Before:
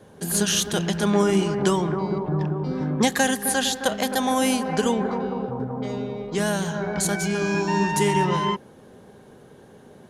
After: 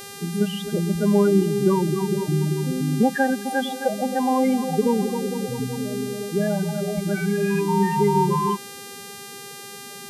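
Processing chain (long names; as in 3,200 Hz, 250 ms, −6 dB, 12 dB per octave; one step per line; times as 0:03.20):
spectral peaks only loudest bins 8
moving average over 7 samples
hum with harmonics 400 Hz, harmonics 33, −42 dBFS −2 dB per octave
level +3 dB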